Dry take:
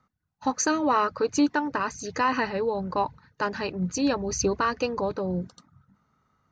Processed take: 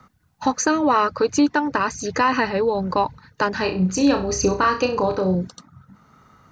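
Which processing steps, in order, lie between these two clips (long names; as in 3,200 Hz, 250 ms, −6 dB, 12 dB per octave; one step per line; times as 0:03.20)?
0:03.54–0:05.35: flutter between parallel walls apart 5.5 metres, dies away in 0.3 s
multiband upward and downward compressor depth 40%
level +5.5 dB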